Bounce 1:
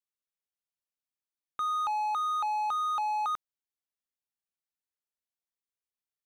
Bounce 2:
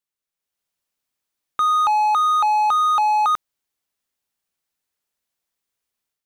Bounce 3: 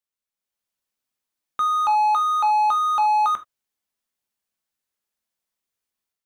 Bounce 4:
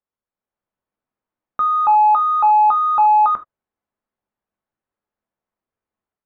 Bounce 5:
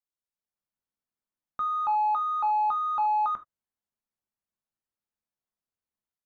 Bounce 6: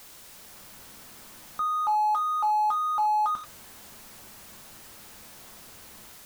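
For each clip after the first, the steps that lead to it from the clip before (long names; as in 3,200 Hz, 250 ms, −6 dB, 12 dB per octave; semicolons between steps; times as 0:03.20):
automatic gain control gain up to 8 dB; level +4.5 dB
reverb whose tail is shaped and stops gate 100 ms falling, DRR 6.5 dB; level −4 dB
low-pass filter 1,200 Hz 12 dB per octave; level +7 dB
drawn EQ curve 170 Hz 0 dB, 470 Hz −5 dB, 2,600 Hz 0 dB, 4,400 Hz +5 dB; level −9 dB
converter with a step at zero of −38 dBFS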